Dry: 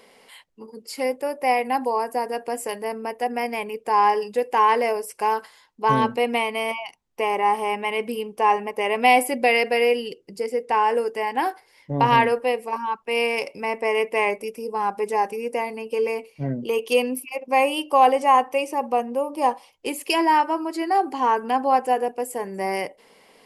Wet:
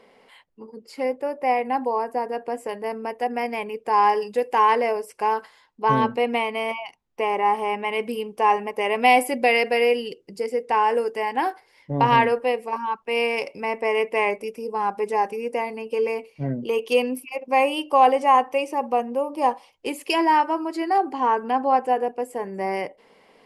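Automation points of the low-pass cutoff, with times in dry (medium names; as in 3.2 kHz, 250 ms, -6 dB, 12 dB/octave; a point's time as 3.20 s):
low-pass 6 dB/octave
1.8 kHz
from 2.84 s 4.1 kHz
from 3.93 s 8.4 kHz
from 4.75 s 3.4 kHz
from 7.93 s 8.5 kHz
from 11.36 s 5.1 kHz
from 20.98 s 2.5 kHz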